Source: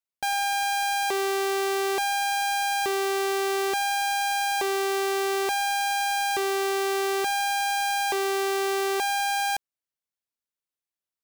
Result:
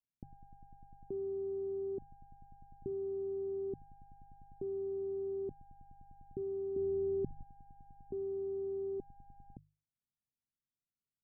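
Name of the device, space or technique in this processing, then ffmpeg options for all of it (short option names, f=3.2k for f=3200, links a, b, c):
the neighbour's flat through the wall: -filter_complex "[0:a]bandreject=f=50:t=h:w=6,bandreject=f=100:t=h:w=6,bandreject=f=150:t=h:w=6,asettb=1/sr,asplit=3[a][b][c];[a]atrim=end=6.764[d];[b]atrim=start=6.76:end=7.43,asetpts=PTS-STARTPTS,afade=t=in:d=0.004:c=qsin,afade=t=out:st=0.666:d=0.004:c=qsin,lowshelf=f=320:g=10[e];[c]atrim=start=7.426[f];[d][e]acrossfade=d=0.004:c1=hsin:c2=qsin[g];[g][f]acrossfade=d=0.004:c1=qsin:c2=hsin,lowpass=f=260:w=0.5412,lowpass=f=260:w=1.3066,equalizer=f=130:t=o:w=0.71:g=5,volume=4dB"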